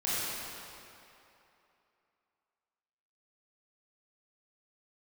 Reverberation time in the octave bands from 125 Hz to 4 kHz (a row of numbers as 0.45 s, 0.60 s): 2.4 s, 2.5 s, 2.8 s, 3.0 s, 2.6 s, 2.1 s